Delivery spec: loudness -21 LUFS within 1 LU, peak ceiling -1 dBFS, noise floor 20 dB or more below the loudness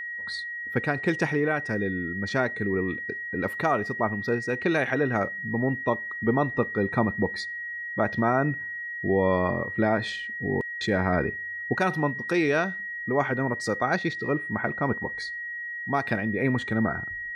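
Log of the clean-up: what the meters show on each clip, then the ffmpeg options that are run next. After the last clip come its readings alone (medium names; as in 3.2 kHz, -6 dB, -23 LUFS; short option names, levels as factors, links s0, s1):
steady tone 1.9 kHz; tone level -32 dBFS; loudness -27.0 LUFS; peak level -10.0 dBFS; loudness target -21.0 LUFS
-> -af "bandreject=f=1900:w=30"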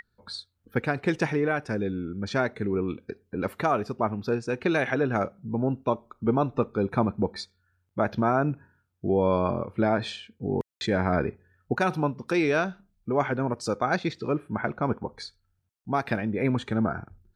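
steady tone not found; loudness -27.5 LUFS; peak level -10.5 dBFS; loudness target -21.0 LUFS
-> -af "volume=2.11"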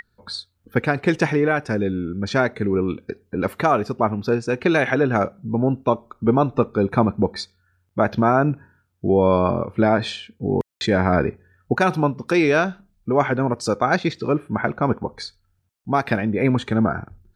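loudness -21.0 LUFS; peak level -4.0 dBFS; noise floor -68 dBFS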